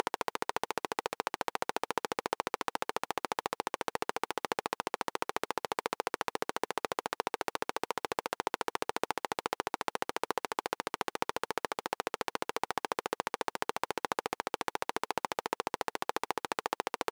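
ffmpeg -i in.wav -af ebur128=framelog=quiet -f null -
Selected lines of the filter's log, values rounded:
Integrated loudness:
  I:         -36.3 LUFS
  Threshold: -46.3 LUFS
Loudness range:
  LRA:         0.4 LU
  Threshold: -56.3 LUFS
  LRA low:   -36.5 LUFS
  LRA high:  -36.1 LUFS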